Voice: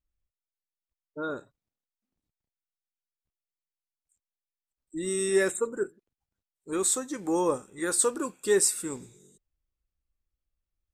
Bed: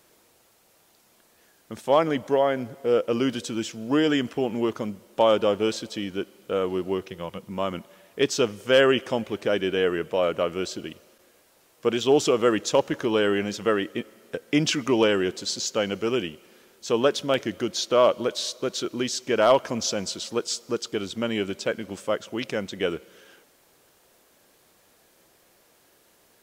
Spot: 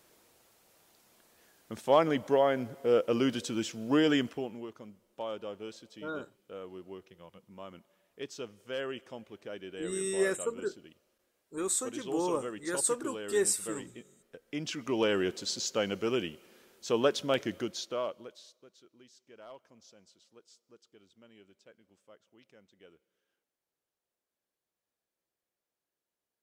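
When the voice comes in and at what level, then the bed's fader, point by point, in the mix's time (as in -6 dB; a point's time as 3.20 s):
4.85 s, -5.0 dB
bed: 4.20 s -4 dB
4.67 s -18.5 dB
14.36 s -18.5 dB
15.19 s -5.5 dB
17.55 s -5.5 dB
18.73 s -31.5 dB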